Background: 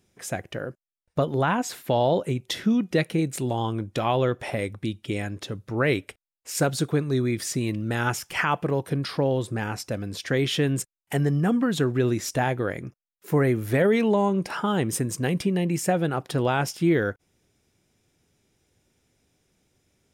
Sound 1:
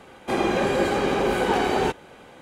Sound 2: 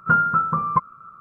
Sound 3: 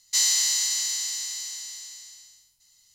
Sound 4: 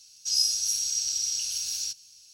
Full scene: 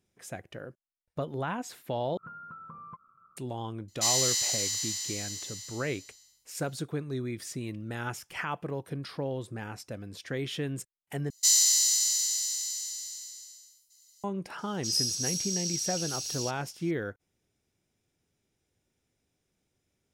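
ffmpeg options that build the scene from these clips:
-filter_complex "[3:a]asplit=2[s0][s1];[0:a]volume=0.316[s2];[2:a]acompressor=threshold=0.0501:ratio=8:attack=7.9:release=120:knee=6:detection=peak[s3];[s1]bass=f=250:g=-7,treble=f=4000:g=12[s4];[s2]asplit=3[s5][s6][s7];[s5]atrim=end=2.174[s8];[s3]atrim=end=1.2,asetpts=PTS-STARTPTS,volume=0.133[s9];[s6]atrim=start=3.366:end=11.304[s10];[s4]atrim=end=2.94,asetpts=PTS-STARTPTS,volume=0.316[s11];[s7]atrim=start=14.236[s12];[s0]atrim=end=2.94,asetpts=PTS-STARTPTS,volume=0.596,afade=t=in:d=0.004:c=hsin,afade=t=out:st=2.936:d=0.004:c=hsin,adelay=3880[s13];[4:a]atrim=end=2.33,asetpts=PTS-STARTPTS,volume=0.596,afade=t=in:d=0.004:c=hsin,afade=t=out:st=2.326:d=0.004:c=hsin,adelay=14580[s14];[s8][s9]acrossfade=d=0.004:c1=hsin:c2=hsin[s15];[s15][s10]acrossfade=d=0.004:c1=hsin:c2=hsin[s16];[s16][s11]acrossfade=d=0.004:c1=hsin:c2=hsin[s17];[s17][s12]acrossfade=d=0.004:c1=hsin:c2=hsin[s18];[s18][s13][s14]amix=inputs=3:normalize=0"

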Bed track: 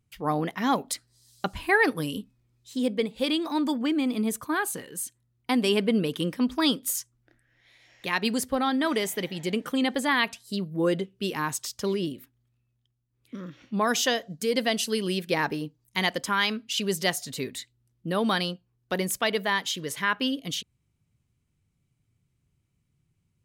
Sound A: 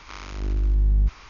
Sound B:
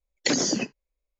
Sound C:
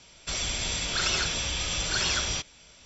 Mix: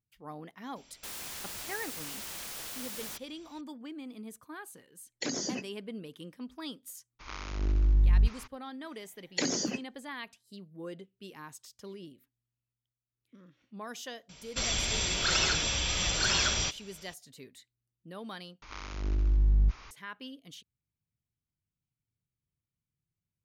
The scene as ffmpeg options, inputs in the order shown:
-filter_complex "[3:a]asplit=2[s0][s1];[2:a]asplit=2[s2][s3];[1:a]asplit=2[s4][s5];[0:a]volume=0.133[s6];[s0]aeval=exprs='(mod(26.6*val(0)+1,2)-1)/26.6':c=same[s7];[s2]dynaudnorm=f=160:g=3:m=3.76[s8];[s6]asplit=2[s9][s10];[s9]atrim=end=18.624[s11];[s5]atrim=end=1.29,asetpts=PTS-STARTPTS,volume=0.596[s12];[s10]atrim=start=19.906[s13];[s7]atrim=end=2.85,asetpts=PTS-STARTPTS,volume=0.398,afade=t=in:d=0.004:c=hsin,afade=t=out:st=2.846:d=0.004:c=hsin,adelay=760[s14];[s8]atrim=end=1.19,asetpts=PTS-STARTPTS,volume=0.133,afade=t=in:d=0.004:c=hsin,afade=t=out:st=1.186:d=0.004:c=hsin,adelay=4960[s15];[s4]atrim=end=1.29,asetpts=PTS-STARTPTS,volume=0.708,afade=t=in:d=0.02,afade=t=out:st=1.27:d=0.02,adelay=7190[s16];[s3]atrim=end=1.19,asetpts=PTS-STARTPTS,volume=0.447,afade=t=in:d=0.004:c=hsin,afade=t=out:st=1.186:d=0.004:c=hsin,adelay=9120[s17];[s1]atrim=end=2.85,asetpts=PTS-STARTPTS,volume=0.944,afade=t=in:d=0.004:c=hsin,afade=t=out:st=2.846:d=0.004:c=hsin,adelay=14290[s18];[s11][s12]acrossfade=d=0.004:c1=hsin:c2=hsin[s19];[s19][s13]acrossfade=d=0.004:c1=hsin:c2=hsin[s20];[s20][s14][s15][s16][s17][s18]amix=inputs=6:normalize=0"

